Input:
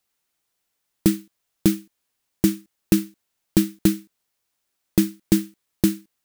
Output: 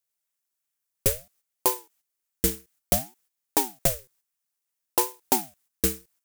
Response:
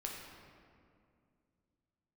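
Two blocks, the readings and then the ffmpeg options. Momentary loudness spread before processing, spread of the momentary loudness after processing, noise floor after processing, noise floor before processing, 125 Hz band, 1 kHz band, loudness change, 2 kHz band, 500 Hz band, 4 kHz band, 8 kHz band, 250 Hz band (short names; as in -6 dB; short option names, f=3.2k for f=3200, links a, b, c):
10 LU, 10 LU, -83 dBFS, -77 dBFS, -9.5 dB, +14.0 dB, -3.0 dB, -1.0 dB, -1.0 dB, -0.5 dB, +4.0 dB, -15.0 dB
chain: -filter_complex "[0:a]asplit=2[a][b];[b]acrusher=samples=10:mix=1:aa=0.000001:lfo=1:lforange=6:lforate=2.5,volume=-9dB[c];[a][c]amix=inputs=2:normalize=0,equalizer=f=125:t=o:w=1:g=-7,equalizer=f=250:t=o:w=1:g=-4,equalizer=f=500:t=o:w=1:g=-6,equalizer=f=4k:t=o:w=1:g=-4,agate=range=-10dB:threshold=-57dB:ratio=16:detection=peak,highshelf=f=2.8k:g=11.5,aeval=exprs='val(0)*sin(2*PI*410*n/s+410*0.7/0.59*sin(2*PI*0.59*n/s))':c=same,volume=-3dB"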